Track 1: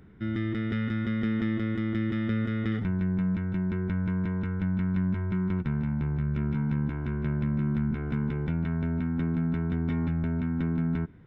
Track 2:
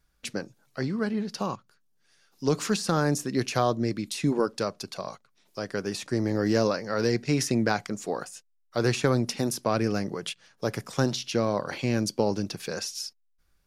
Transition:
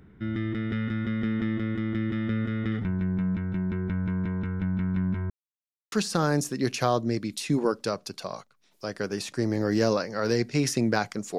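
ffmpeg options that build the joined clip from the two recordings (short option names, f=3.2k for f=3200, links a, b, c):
-filter_complex "[0:a]apad=whole_dur=11.38,atrim=end=11.38,asplit=2[a][b];[a]atrim=end=5.3,asetpts=PTS-STARTPTS,afade=t=out:st=5.296:d=0.004:c=hsin[c];[b]atrim=start=5.3:end=5.92,asetpts=PTS-STARTPTS,volume=0[d];[1:a]atrim=start=2.66:end=8.12,asetpts=PTS-STARTPTS,afade=t=in:d=0.004:c=hsin[e];[c][d][e]concat=n=3:v=0:a=1"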